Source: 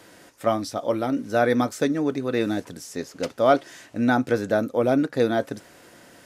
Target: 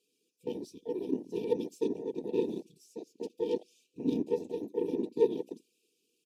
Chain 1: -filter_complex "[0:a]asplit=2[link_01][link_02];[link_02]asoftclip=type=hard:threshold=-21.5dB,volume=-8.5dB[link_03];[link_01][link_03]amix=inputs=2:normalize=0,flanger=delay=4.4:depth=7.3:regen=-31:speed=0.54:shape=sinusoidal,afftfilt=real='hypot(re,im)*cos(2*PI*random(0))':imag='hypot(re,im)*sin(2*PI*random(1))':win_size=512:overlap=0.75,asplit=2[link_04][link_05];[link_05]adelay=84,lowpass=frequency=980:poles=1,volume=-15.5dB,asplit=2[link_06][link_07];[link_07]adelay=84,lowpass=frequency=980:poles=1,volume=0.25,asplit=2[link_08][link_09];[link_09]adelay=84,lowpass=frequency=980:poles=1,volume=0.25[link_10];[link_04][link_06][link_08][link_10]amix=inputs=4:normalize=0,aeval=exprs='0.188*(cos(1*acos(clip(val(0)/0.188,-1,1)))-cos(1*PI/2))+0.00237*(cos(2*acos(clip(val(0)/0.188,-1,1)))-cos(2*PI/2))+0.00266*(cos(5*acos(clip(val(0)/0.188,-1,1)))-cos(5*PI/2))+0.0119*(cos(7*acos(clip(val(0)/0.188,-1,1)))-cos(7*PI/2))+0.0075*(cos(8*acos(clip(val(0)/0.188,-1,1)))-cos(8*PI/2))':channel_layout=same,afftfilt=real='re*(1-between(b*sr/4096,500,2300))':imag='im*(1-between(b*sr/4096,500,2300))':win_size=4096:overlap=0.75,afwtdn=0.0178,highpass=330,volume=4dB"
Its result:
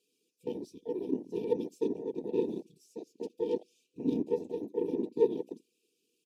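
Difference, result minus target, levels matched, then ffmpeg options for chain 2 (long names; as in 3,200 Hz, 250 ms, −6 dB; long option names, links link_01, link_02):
2,000 Hz band −3.5 dB
-filter_complex "[0:a]asplit=2[link_01][link_02];[link_02]asoftclip=type=hard:threshold=-21.5dB,volume=-8.5dB[link_03];[link_01][link_03]amix=inputs=2:normalize=0,flanger=delay=4.4:depth=7.3:regen=-31:speed=0.54:shape=sinusoidal,afftfilt=real='hypot(re,im)*cos(2*PI*random(0))':imag='hypot(re,im)*sin(2*PI*random(1))':win_size=512:overlap=0.75,asplit=2[link_04][link_05];[link_05]adelay=84,lowpass=frequency=980:poles=1,volume=-15.5dB,asplit=2[link_06][link_07];[link_07]adelay=84,lowpass=frequency=980:poles=1,volume=0.25,asplit=2[link_08][link_09];[link_09]adelay=84,lowpass=frequency=980:poles=1,volume=0.25[link_10];[link_04][link_06][link_08][link_10]amix=inputs=4:normalize=0,aeval=exprs='0.188*(cos(1*acos(clip(val(0)/0.188,-1,1)))-cos(1*PI/2))+0.00237*(cos(2*acos(clip(val(0)/0.188,-1,1)))-cos(2*PI/2))+0.00266*(cos(5*acos(clip(val(0)/0.188,-1,1)))-cos(5*PI/2))+0.0119*(cos(7*acos(clip(val(0)/0.188,-1,1)))-cos(7*PI/2))+0.0075*(cos(8*acos(clip(val(0)/0.188,-1,1)))-cos(8*PI/2))':channel_layout=same,afftfilt=real='re*(1-between(b*sr/4096,500,2300))':imag='im*(1-between(b*sr/4096,500,2300))':win_size=4096:overlap=0.75,afwtdn=0.0178,highpass=330,adynamicequalizer=threshold=0.00224:dfrequency=1800:dqfactor=0.7:tfrequency=1800:tqfactor=0.7:attack=5:release=100:ratio=0.333:range=2.5:mode=boostabove:tftype=highshelf,volume=4dB"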